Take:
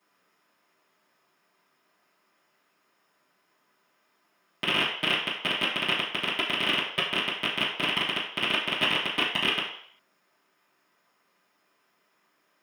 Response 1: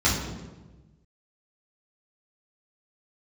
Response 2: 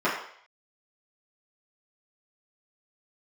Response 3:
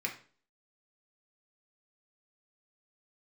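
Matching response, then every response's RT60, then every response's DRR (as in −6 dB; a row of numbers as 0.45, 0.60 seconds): 2; 1.2, 0.60, 0.40 seconds; −9.0, −11.0, 0.0 decibels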